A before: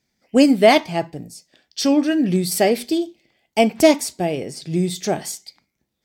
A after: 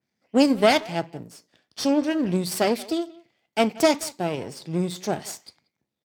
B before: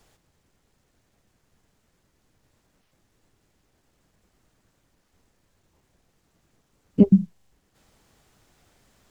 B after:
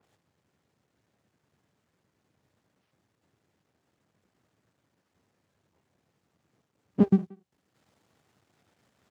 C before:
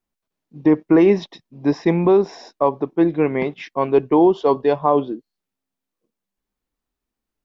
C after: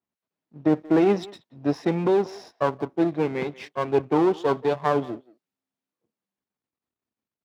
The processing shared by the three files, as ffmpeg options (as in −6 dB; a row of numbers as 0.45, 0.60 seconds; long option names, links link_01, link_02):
-filter_complex "[0:a]aeval=exprs='if(lt(val(0),0),0.251*val(0),val(0))':channel_layout=same,highpass=frequency=88:width=0.5412,highpass=frequency=88:width=1.3066,highshelf=frequency=5000:gain=-9,asplit=2[link_01][link_02];[link_02]adelay=180,highpass=300,lowpass=3400,asoftclip=type=hard:threshold=-12dB,volume=-20dB[link_03];[link_01][link_03]amix=inputs=2:normalize=0,adynamicequalizer=threshold=0.01:dfrequency=3200:dqfactor=0.7:tfrequency=3200:tqfactor=0.7:attack=5:release=100:ratio=0.375:range=3.5:mode=boostabove:tftype=highshelf,volume=-2dB"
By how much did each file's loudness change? −5.5, −5.5, −6.0 LU